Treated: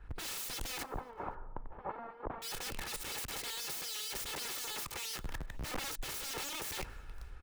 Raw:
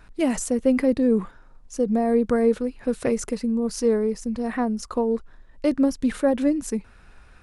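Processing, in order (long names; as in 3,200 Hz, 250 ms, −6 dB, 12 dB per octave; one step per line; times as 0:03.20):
lower of the sound and its delayed copy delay 2.3 ms
0:05.10–0:05.66: low-shelf EQ 66 Hz +2.5 dB
downward compressor 6 to 1, threshold −27 dBFS, peak gain reduction 12 dB
brickwall limiter −28 dBFS, peak gain reduction 11 dB
wrap-around overflow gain 40.5 dB
0:00.83–0:02.42: low-pass with resonance 960 Hz, resonance Q 1.9
on a send: single-tap delay 519 ms −21.5 dB
on the sum: multiband upward and downward expander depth 100%
level +5 dB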